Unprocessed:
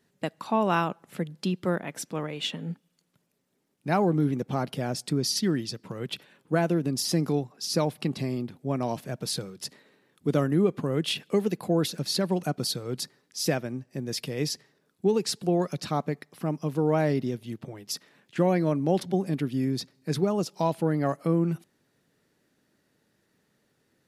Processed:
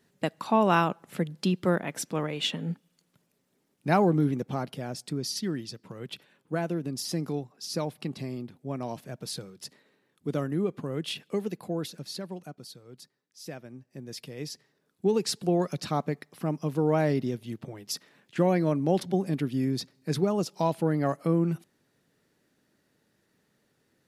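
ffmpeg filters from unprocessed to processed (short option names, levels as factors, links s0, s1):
-af "volume=7.94,afade=t=out:st=3.9:d=0.89:silence=0.421697,afade=t=out:st=11.43:d=1.21:silence=0.281838,afade=t=in:st=13.39:d=0.6:silence=0.398107,afade=t=in:st=14.52:d=0.66:silence=0.398107"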